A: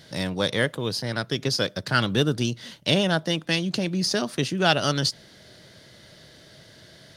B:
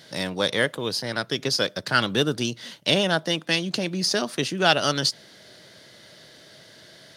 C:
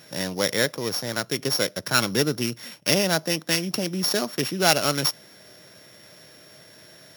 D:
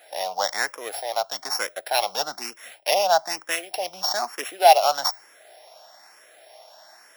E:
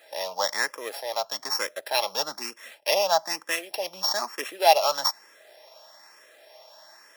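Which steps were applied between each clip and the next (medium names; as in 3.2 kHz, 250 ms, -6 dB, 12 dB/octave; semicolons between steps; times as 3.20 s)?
high-pass 270 Hz 6 dB/octave; trim +2 dB
sorted samples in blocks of 8 samples
resonant high-pass 750 Hz, resonance Q 6.2; barber-pole phaser +1.1 Hz
comb of notches 740 Hz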